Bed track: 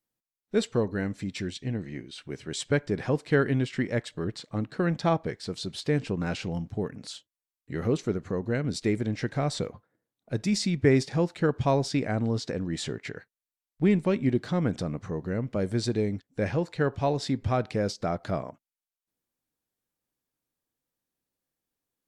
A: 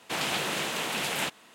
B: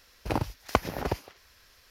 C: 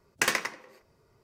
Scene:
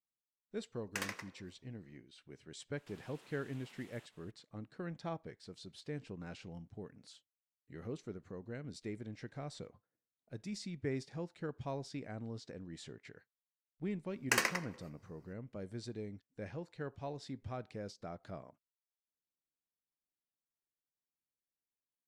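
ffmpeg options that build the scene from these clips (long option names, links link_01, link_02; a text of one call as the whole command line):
ffmpeg -i bed.wav -i cue0.wav -i cue1.wav -i cue2.wav -filter_complex "[3:a]asplit=2[link_01][link_02];[0:a]volume=-17dB[link_03];[1:a]acompressor=threshold=-43dB:ratio=6:attack=3.2:release=140:knee=1:detection=peak[link_04];[link_02]bandreject=frequency=3500:width=6.4[link_05];[link_01]atrim=end=1.23,asetpts=PTS-STARTPTS,volume=-14.5dB,afade=type=in:duration=0.004:curve=hsin,afade=type=out:start_time=1.226:duration=0.004:curve=hsin,adelay=740[link_06];[link_04]atrim=end=1.54,asetpts=PTS-STARTPTS,volume=-17dB,afade=type=in:duration=0.004:curve=hsin,afade=type=out:start_time=1.536:duration=0.004:curve=hsin,adelay=2770[link_07];[link_05]atrim=end=1.23,asetpts=PTS-STARTPTS,volume=-5dB,afade=type=in:duration=0.004:curve=hsin,afade=type=out:start_time=1.226:duration=0.004:curve=hsin,adelay=14100[link_08];[link_03][link_06][link_07][link_08]amix=inputs=4:normalize=0" out.wav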